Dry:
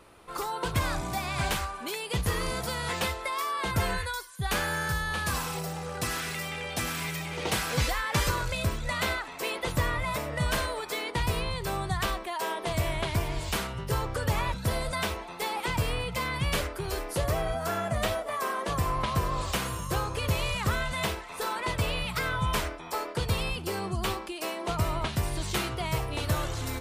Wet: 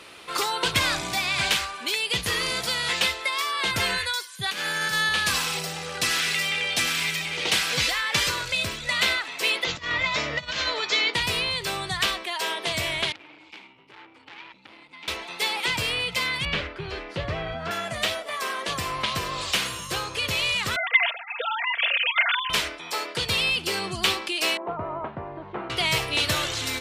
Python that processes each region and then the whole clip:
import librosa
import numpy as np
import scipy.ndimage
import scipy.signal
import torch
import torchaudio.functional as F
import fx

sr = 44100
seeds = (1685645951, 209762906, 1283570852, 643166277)

y = fx.chain(x, sr, fx.low_shelf_res(hz=130.0, db=-11.5, q=1.5),
    fx.over_compress(threshold_db=-32.0, ratio=-0.5), at=(4.43, 5.09))
y = fx.chain(y, sr, fx.steep_lowpass(hz=7100.0, slope=72),
    fx.doubler(ms=13.0, db=-11.0),
    fx.over_compress(threshold_db=-31.0, ratio=-0.5), at=(9.64, 11.14))
y = fx.chain(y, sr, fx.vowel_filter(vowel='u'),
    fx.transformer_sat(knee_hz=2400.0), at=(13.12, 15.08))
y = fx.chain(y, sr, fx.lowpass(hz=5100.0, slope=12),
    fx.bass_treble(bass_db=8, treble_db=-13), at=(16.45, 17.71))
y = fx.chain(y, sr, fx.sine_speech(),
    fx.highpass(hz=290.0, slope=12),
    fx.comb(ms=4.3, depth=0.77), at=(20.76, 22.5))
y = fx.chain(y, sr, fx.lowpass(hz=1000.0, slope=24),
    fx.tilt_eq(slope=3.0), at=(24.57, 25.7))
y = fx.rider(y, sr, range_db=10, speed_s=2.0)
y = fx.weighting(y, sr, curve='D')